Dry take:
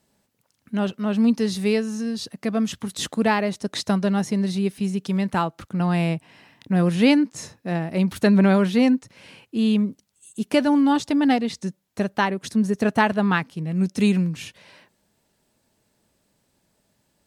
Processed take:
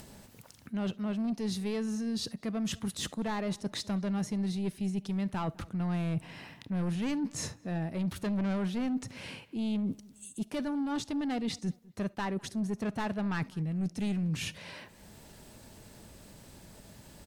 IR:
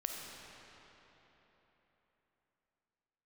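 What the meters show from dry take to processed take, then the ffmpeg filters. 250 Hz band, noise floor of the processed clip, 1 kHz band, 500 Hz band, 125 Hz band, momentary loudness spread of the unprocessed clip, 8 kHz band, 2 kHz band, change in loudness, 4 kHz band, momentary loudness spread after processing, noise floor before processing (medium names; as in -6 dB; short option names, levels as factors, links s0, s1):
-11.5 dB, -57 dBFS, -14.5 dB, -14.5 dB, -9.0 dB, 11 LU, -5.5 dB, -14.5 dB, -12.0 dB, -9.0 dB, 20 LU, -70 dBFS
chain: -filter_complex "[0:a]asoftclip=type=tanh:threshold=0.133,areverse,acompressor=threshold=0.0158:ratio=6,areverse,lowshelf=f=110:g=10,asplit=2[s0][s1];[s1]adelay=203,lowpass=f=1900:p=1,volume=0.0708,asplit=2[s2][s3];[s3]adelay=203,lowpass=f=1900:p=1,volume=0.31[s4];[s0][s2][s4]amix=inputs=3:normalize=0,asplit=2[s5][s6];[1:a]atrim=start_sample=2205,atrim=end_sample=3528[s7];[s6][s7]afir=irnorm=-1:irlink=0,volume=0.355[s8];[s5][s8]amix=inputs=2:normalize=0,acompressor=mode=upward:threshold=0.01:ratio=2.5"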